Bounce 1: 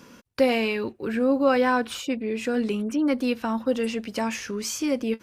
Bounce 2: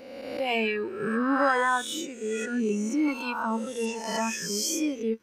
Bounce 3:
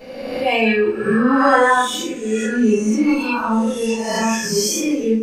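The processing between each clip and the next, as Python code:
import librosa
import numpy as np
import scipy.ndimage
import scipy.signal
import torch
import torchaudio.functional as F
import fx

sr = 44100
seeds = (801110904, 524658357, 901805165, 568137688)

y1 = fx.spec_swells(x, sr, rise_s=1.63)
y1 = fx.noise_reduce_blind(y1, sr, reduce_db=14)
y1 = y1 * librosa.db_to_amplitude(-1.5)
y2 = fx.echo_feedback(y1, sr, ms=159, feedback_pct=38, wet_db=-23.0)
y2 = fx.room_shoebox(y2, sr, seeds[0], volume_m3=210.0, walls='furnished', distance_m=6.0)
y2 = y2 * librosa.db_to_amplitude(-1.0)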